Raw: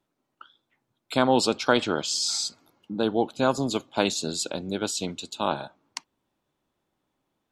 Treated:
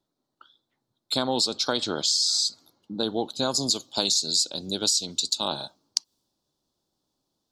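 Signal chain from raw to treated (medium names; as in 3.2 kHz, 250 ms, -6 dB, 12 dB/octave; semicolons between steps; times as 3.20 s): resonant high shelf 3.2 kHz +8 dB, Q 3, from 3.54 s +13.5 dB; compression 10:1, threshold -18 dBFS, peak gain reduction 11.5 dB; tape noise reduction on one side only decoder only; trim -2 dB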